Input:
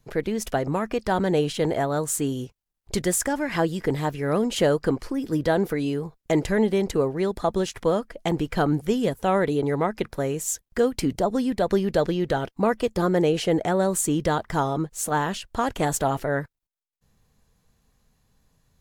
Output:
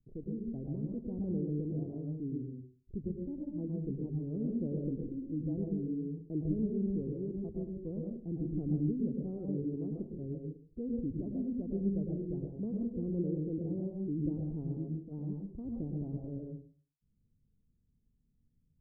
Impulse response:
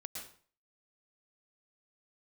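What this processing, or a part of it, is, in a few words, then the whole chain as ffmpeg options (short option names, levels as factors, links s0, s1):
next room: -filter_complex "[0:a]lowpass=f=330:w=0.5412,lowpass=f=330:w=1.3066[s0];[1:a]atrim=start_sample=2205[s1];[s0][s1]afir=irnorm=-1:irlink=0,volume=0.531"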